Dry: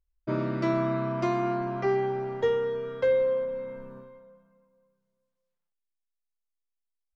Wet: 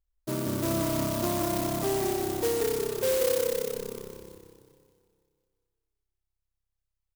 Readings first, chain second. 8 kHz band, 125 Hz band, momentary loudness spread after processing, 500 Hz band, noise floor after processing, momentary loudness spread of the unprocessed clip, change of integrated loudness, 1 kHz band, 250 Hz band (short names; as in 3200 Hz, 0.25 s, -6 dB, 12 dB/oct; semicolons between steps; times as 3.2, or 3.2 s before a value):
n/a, -0.5 dB, 10 LU, -1.5 dB, -85 dBFS, 9 LU, -0.5 dB, -2.5 dB, 0.0 dB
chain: in parallel at -1.5 dB: limiter -23.5 dBFS, peak gain reduction 8.5 dB; on the sum: frequency-shifting echo 0.179 s, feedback 50%, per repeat -33 Hz, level -3.5 dB; clock jitter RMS 0.12 ms; gain -6.5 dB